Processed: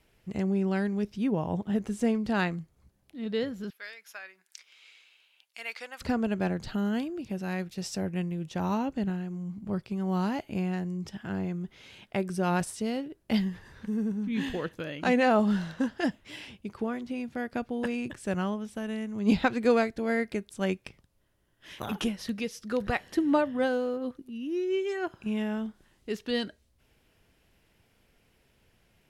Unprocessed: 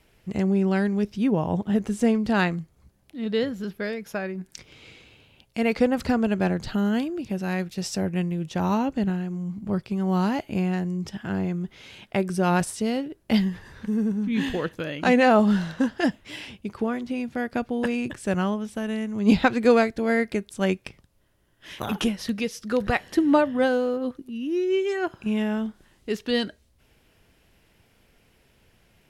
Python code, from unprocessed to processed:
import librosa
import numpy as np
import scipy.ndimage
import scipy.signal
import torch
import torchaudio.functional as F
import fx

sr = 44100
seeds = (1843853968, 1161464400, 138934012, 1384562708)

y = fx.highpass(x, sr, hz=1400.0, slope=12, at=(3.7, 6.01))
y = y * librosa.db_to_amplitude(-5.5)